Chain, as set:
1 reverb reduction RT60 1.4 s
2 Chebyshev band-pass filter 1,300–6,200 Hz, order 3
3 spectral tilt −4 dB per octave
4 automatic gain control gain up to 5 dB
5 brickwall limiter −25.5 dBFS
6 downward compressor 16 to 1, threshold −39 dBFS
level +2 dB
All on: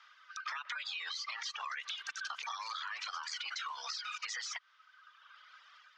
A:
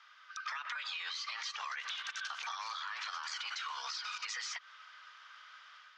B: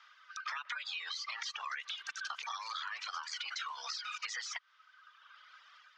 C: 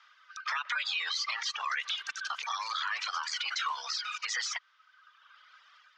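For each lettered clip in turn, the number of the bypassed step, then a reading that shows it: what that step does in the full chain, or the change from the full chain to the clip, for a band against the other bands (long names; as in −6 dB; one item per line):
1, change in momentary loudness spread −3 LU
5, change in crest factor +3.5 dB
6, average gain reduction 4.5 dB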